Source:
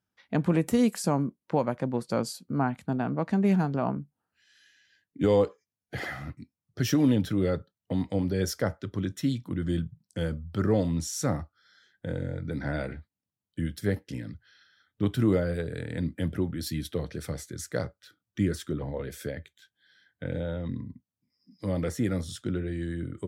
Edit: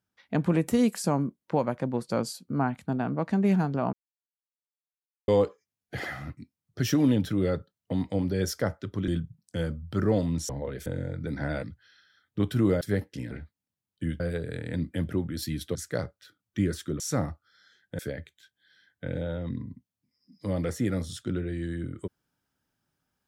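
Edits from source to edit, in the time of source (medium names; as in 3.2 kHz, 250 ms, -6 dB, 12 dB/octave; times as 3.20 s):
3.93–5.28 s: mute
9.08–9.70 s: delete
11.11–12.10 s: swap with 18.81–19.18 s
12.87–13.76 s: swap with 14.26–15.44 s
16.99–17.56 s: delete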